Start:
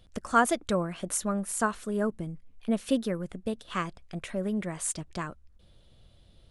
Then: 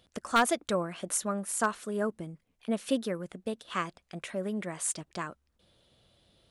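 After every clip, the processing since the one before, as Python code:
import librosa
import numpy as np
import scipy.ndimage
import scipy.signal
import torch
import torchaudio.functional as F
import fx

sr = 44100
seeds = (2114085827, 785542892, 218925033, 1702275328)

y = fx.highpass(x, sr, hz=270.0, slope=6)
y = 10.0 ** (-14.5 / 20.0) * (np.abs((y / 10.0 ** (-14.5 / 20.0) + 3.0) % 4.0 - 2.0) - 1.0)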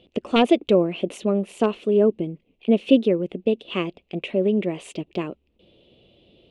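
y = fx.curve_eq(x, sr, hz=(110.0, 390.0, 1600.0, 2700.0, 5200.0, 12000.0), db=(0, 12, -14, 9, -13, -25))
y = F.gain(torch.from_numpy(y), 5.5).numpy()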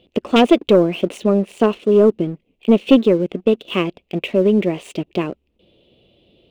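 y = scipy.ndimage.median_filter(x, 3, mode='constant')
y = fx.leveller(y, sr, passes=1)
y = F.gain(torch.from_numpy(y), 2.5).numpy()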